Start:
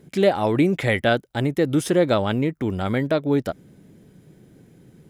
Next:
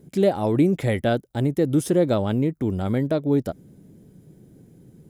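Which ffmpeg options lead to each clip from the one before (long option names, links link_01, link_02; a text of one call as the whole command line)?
ffmpeg -i in.wav -af "equalizer=frequency=2100:width=0.41:gain=-10.5,volume=1.5dB" out.wav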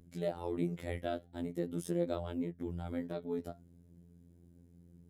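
ffmpeg -i in.wav -af "aeval=exprs='val(0)+0.00891*(sin(2*PI*60*n/s)+sin(2*PI*2*60*n/s)/2+sin(2*PI*3*60*n/s)/3+sin(2*PI*4*60*n/s)/4+sin(2*PI*5*60*n/s)/5)':channel_layout=same,flanger=delay=2.6:depth=7.6:regen=79:speed=0.45:shape=triangular,afftfilt=real='hypot(re,im)*cos(PI*b)':imag='0':win_size=2048:overlap=0.75,volume=-7.5dB" out.wav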